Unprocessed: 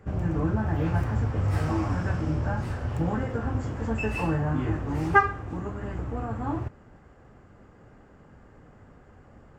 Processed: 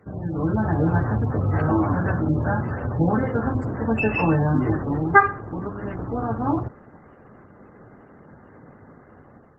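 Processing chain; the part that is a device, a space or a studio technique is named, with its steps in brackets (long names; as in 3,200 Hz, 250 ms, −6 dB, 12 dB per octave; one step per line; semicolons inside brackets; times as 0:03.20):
noise-suppressed video call (high-pass filter 120 Hz 12 dB per octave; gate on every frequency bin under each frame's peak −25 dB strong; automatic gain control gain up to 8 dB; Opus 16 kbit/s 48,000 Hz)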